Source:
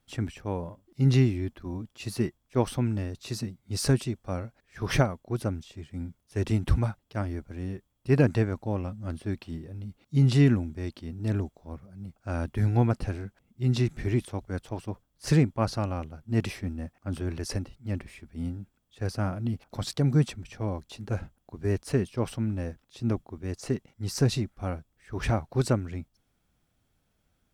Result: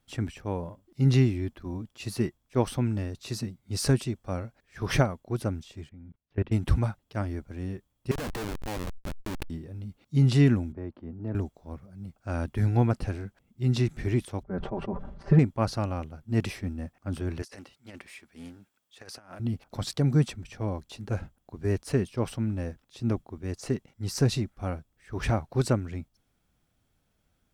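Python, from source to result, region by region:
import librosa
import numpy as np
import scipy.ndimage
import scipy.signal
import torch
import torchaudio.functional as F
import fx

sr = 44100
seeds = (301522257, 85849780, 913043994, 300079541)

y = fx.chain(x, sr, fx.lowpass(hz=3100.0, slope=24),
    fx.low_shelf(hz=500.0, db=3.0),
    fx.level_steps(step_db=23), at=(5.89, 6.52))
y = fx.chain(y, sr, fx.weighting(curve='A'),
    fx.schmitt(flips_db=-38.5),
    fx.env_flatten(amount_pct=100), at=(8.11, 9.5))
y = fx.chain(y, sr, fx.lowpass(hz=1100.0, slope=12),
    fx.low_shelf(hz=200.0, db=-7.0),
    fx.band_squash(depth_pct=40), at=(10.72, 11.35))
y = fx.chain(y, sr, fx.lowpass(hz=1100.0, slope=12),
    fx.comb(ms=5.1, depth=0.91),
    fx.sustainer(db_per_s=56.0), at=(14.43, 15.39))
y = fx.chain(y, sr, fx.highpass(hz=1000.0, slope=6),
    fx.over_compress(threshold_db=-44.0, ratio=-0.5),
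    fx.doppler_dist(depth_ms=0.16), at=(17.42, 19.4))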